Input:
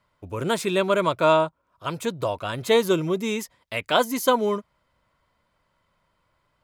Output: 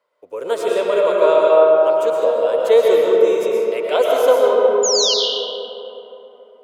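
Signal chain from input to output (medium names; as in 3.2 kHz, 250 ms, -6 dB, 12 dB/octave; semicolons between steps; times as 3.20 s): resonant high-pass 480 Hz, resonance Q 4.8; painted sound fall, 4.83–5.14 s, 2.8–7.2 kHz -14 dBFS; algorithmic reverb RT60 3.6 s, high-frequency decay 0.4×, pre-delay 80 ms, DRR -3.5 dB; trim -5 dB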